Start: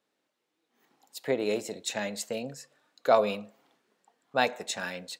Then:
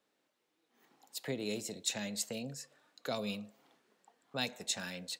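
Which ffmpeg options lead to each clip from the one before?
-filter_complex "[0:a]acrossover=split=240|3000[s0][s1][s2];[s1]acompressor=threshold=0.00398:ratio=2.5[s3];[s0][s3][s2]amix=inputs=3:normalize=0"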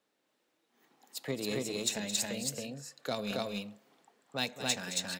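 -filter_complex "[0:a]asplit=2[s0][s1];[s1]acrusher=bits=4:mix=0:aa=0.5,volume=0.316[s2];[s0][s2]amix=inputs=2:normalize=0,aecho=1:1:218.7|274.1:0.282|0.891"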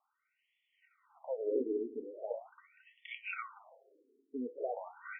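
-af "asuperstop=centerf=1700:order=20:qfactor=6.3,afftfilt=real='re*between(b*sr/1024,310*pow(2500/310,0.5+0.5*sin(2*PI*0.41*pts/sr))/1.41,310*pow(2500/310,0.5+0.5*sin(2*PI*0.41*pts/sr))*1.41)':imag='im*between(b*sr/1024,310*pow(2500/310,0.5+0.5*sin(2*PI*0.41*pts/sr))/1.41,310*pow(2500/310,0.5+0.5*sin(2*PI*0.41*pts/sr))*1.41)':win_size=1024:overlap=0.75,volume=1.78"

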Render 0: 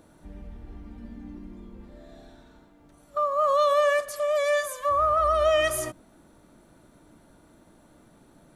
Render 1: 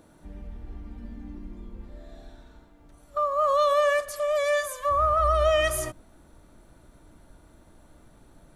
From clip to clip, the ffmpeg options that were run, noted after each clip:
-af "asubboost=boost=3.5:cutoff=95"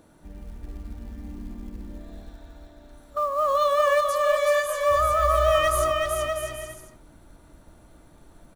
-af "aecho=1:1:380|646|832.2|962.5|1054:0.631|0.398|0.251|0.158|0.1,acrusher=bits=7:mode=log:mix=0:aa=0.000001"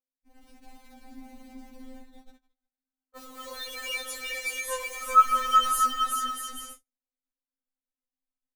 -af "agate=range=0.00447:threshold=0.0126:ratio=16:detection=peak,afftfilt=real='re*3.46*eq(mod(b,12),0)':imag='im*3.46*eq(mod(b,12),0)':win_size=2048:overlap=0.75,volume=1.41"

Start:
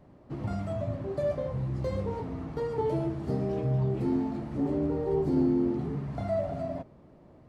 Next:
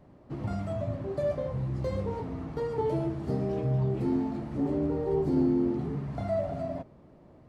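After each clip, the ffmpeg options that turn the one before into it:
-af anull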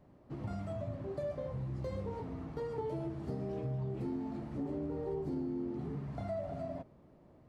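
-af "acompressor=threshold=0.0398:ratio=6,volume=0.501"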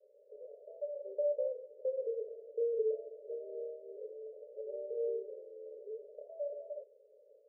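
-af "asuperpass=centerf=500:order=12:qfactor=2.7,volume=2.24"

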